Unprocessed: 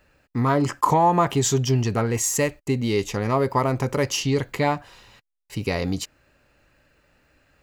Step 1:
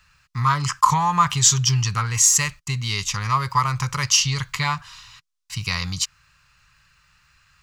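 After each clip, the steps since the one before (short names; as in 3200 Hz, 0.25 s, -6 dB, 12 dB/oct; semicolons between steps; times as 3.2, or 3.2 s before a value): EQ curve 160 Hz 0 dB, 260 Hz -22 dB, 660 Hz -19 dB, 1100 Hz +7 dB, 1700 Hz +1 dB, 5800 Hz +10 dB, 9300 Hz +4 dB, 13000 Hz -1 dB; gain +1.5 dB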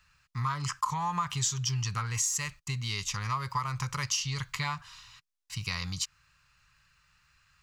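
compressor 4:1, threshold -20 dBFS, peak gain reduction 10 dB; gain -7.5 dB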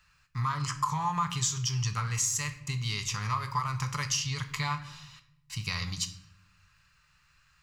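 reverb RT60 0.80 s, pre-delay 7 ms, DRR 8 dB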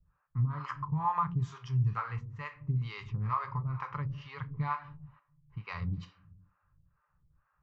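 harmonic tremolo 2.2 Hz, depth 100%, crossover 450 Hz; low-pass opened by the level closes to 940 Hz, open at -29 dBFS; LPF 1300 Hz 12 dB/oct; gain +4 dB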